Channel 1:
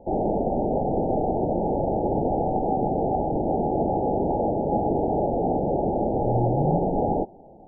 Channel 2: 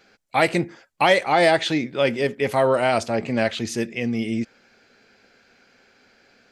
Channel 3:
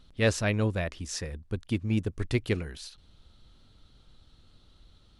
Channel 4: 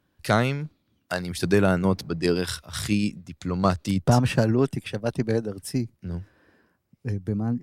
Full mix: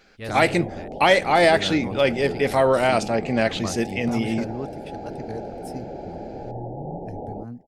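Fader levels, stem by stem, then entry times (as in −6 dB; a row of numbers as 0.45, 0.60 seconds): −11.0, +0.5, −10.5, −11.0 decibels; 0.20, 0.00, 0.00, 0.00 seconds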